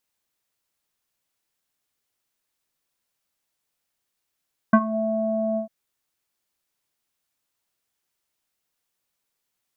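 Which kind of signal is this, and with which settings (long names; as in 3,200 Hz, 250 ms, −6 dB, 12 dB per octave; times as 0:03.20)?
subtractive voice square A3 24 dB per octave, low-pass 710 Hz, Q 5.5, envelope 1 octave, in 0.22 s, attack 6.3 ms, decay 0.06 s, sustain −16.5 dB, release 0.11 s, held 0.84 s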